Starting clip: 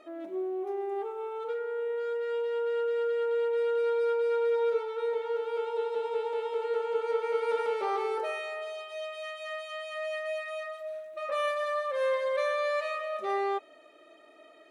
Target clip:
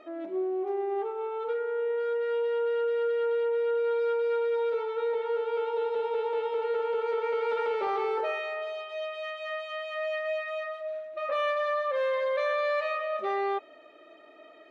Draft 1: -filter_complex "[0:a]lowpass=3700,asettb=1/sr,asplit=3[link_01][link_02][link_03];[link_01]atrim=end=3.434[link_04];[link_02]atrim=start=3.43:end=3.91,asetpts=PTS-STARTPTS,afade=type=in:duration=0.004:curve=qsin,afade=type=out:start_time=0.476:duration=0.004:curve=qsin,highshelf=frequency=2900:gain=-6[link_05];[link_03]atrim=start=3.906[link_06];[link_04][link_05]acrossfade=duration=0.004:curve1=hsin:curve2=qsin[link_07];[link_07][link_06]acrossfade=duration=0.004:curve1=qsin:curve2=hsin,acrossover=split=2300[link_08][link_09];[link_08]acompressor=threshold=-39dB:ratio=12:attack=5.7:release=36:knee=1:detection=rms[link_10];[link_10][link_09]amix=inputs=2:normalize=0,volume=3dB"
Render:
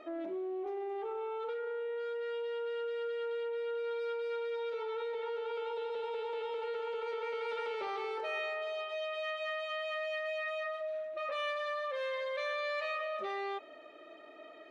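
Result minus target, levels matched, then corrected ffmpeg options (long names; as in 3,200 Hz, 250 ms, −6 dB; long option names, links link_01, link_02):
downward compressor: peak gain reduction +9.5 dB
-filter_complex "[0:a]lowpass=3700,asettb=1/sr,asplit=3[link_01][link_02][link_03];[link_01]atrim=end=3.434[link_04];[link_02]atrim=start=3.43:end=3.91,asetpts=PTS-STARTPTS,afade=type=in:duration=0.004:curve=qsin,afade=type=out:start_time=0.476:duration=0.004:curve=qsin,highshelf=frequency=2900:gain=-6[link_05];[link_03]atrim=start=3.906[link_06];[link_04][link_05]acrossfade=duration=0.004:curve1=hsin:curve2=qsin[link_07];[link_07][link_06]acrossfade=duration=0.004:curve1=qsin:curve2=hsin,acrossover=split=2300[link_08][link_09];[link_08]acompressor=threshold=-28.5dB:ratio=12:attack=5.7:release=36:knee=1:detection=rms[link_10];[link_10][link_09]amix=inputs=2:normalize=0,volume=3dB"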